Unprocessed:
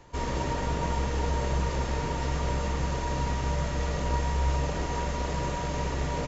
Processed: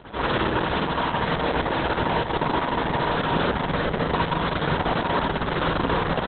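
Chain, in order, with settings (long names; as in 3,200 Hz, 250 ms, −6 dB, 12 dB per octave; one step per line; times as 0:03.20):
upward compression, threshold −49 dBFS
low-pass filter sweep 6,200 Hz → 2,500 Hz, 0:02.62–0:05.93
on a send: echo with shifted repeats 87 ms, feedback 44%, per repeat +37 Hz, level −23 dB
on the sum: mains hum 50 Hz, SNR 16 dB
parametric band 70 Hz −10 dB 1.3 octaves
mains-hum notches 50/100/150/200 Hz
sample-rate reduction 2,400 Hz, jitter 20%
high-pass filter 48 Hz 24 dB per octave
spring reverb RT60 1.4 s, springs 49 ms, chirp 45 ms, DRR −9 dB
brickwall limiter −20 dBFS, peak gain reduction 11 dB
0:00.60–0:01.46: dynamic equaliser 380 Hz, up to −5 dB, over −44 dBFS, Q 2.3
level +5.5 dB
Opus 6 kbit/s 48,000 Hz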